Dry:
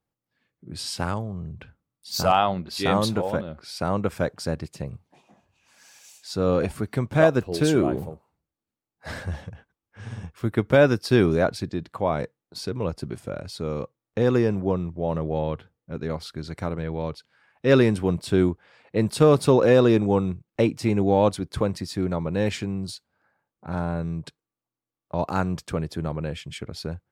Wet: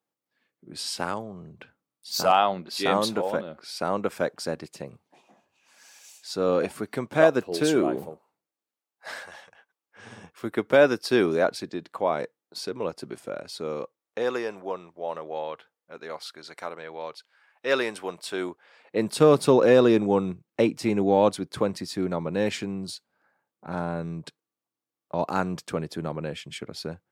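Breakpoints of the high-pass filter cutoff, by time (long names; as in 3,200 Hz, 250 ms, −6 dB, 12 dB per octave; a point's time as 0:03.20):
0:08.08 260 Hz
0:09.48 890 Hz
0:10.09 300 Hz
0:13.72 300 Hz
0:14.41 640 Hz
0:18.36 640 Hz
0:19.23 190 Hz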